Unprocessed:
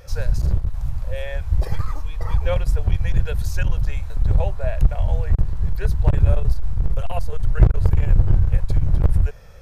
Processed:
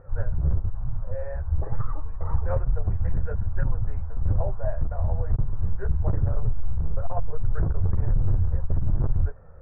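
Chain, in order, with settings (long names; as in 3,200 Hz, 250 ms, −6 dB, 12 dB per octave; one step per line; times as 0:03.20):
Butterworth low-pass 1,500 Hz 36 dB per octave
brickwall limiter −10 dBFS, peak gain reduction 8.5 dB
flanger 1.1 Hz, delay 7.3 ms, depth 6.2 ms, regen −14%
highs frequency-modulated by the lows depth 0.39 ms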